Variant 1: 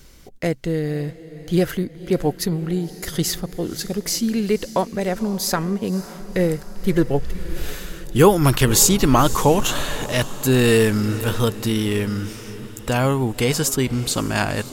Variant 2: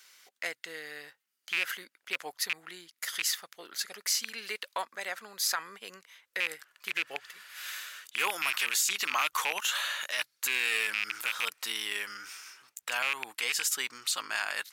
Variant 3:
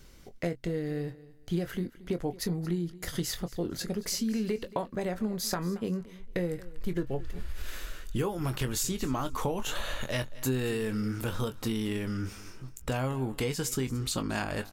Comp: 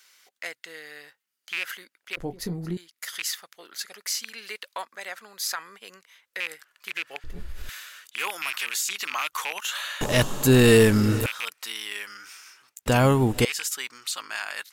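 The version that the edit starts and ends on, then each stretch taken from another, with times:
2
2.17–2.77 from 3
7.24–7.69 from 3
10.01–11.26 from 1
12.86–13.45 from 1

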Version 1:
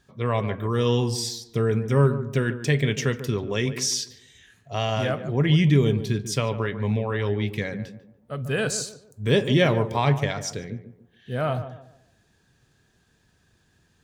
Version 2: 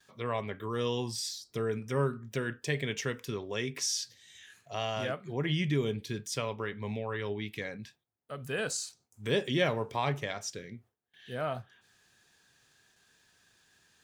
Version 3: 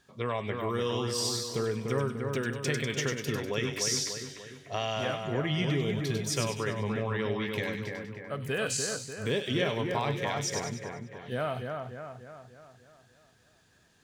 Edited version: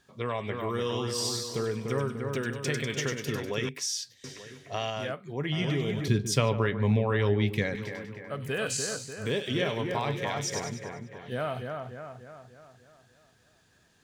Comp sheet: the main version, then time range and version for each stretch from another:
3
3.69–4.24 from 2
4.9–5.52 from 2
6.08–7.75 from 1

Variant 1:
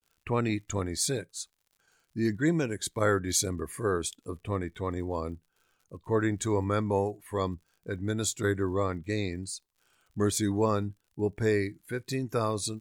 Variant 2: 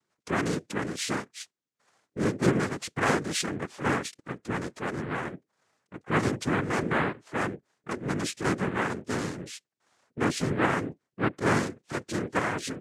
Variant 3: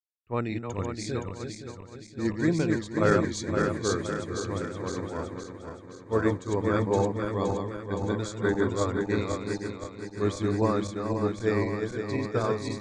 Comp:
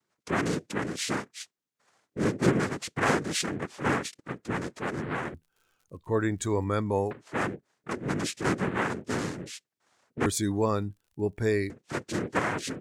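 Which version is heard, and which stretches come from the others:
2
5.34–7.11 from 1
10.26–11.7 from 1
not used: 3

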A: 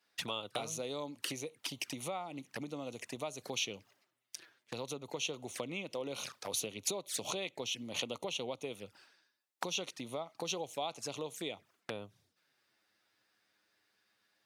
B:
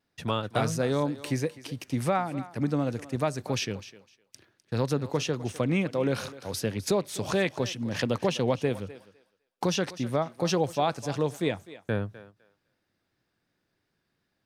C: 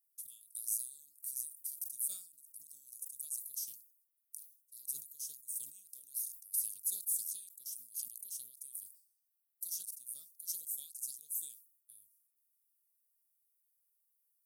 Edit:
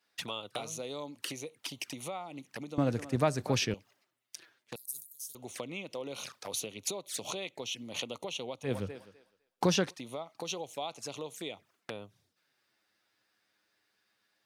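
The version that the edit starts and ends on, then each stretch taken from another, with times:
A
2.78–3.74 from B
4.76–5.35 from C
8.68–9.87 from B, crossfade 0.16 s

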